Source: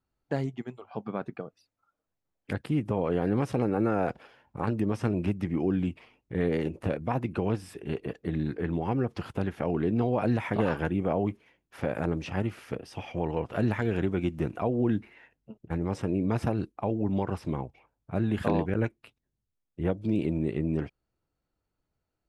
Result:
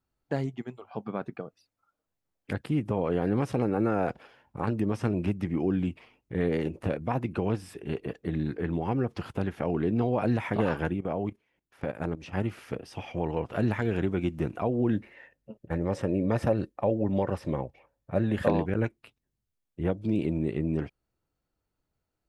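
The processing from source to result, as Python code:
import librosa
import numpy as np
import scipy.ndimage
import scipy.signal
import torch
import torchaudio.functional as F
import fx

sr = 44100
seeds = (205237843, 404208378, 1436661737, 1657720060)

y = fx.level_steps(x, sr, step_db=15, at=(10.93, 12.33))
y = fx.small_body(y, sr, hz=(550.0, 1800.0), ring_ms=45, db=12, at=(14.93, 18.5))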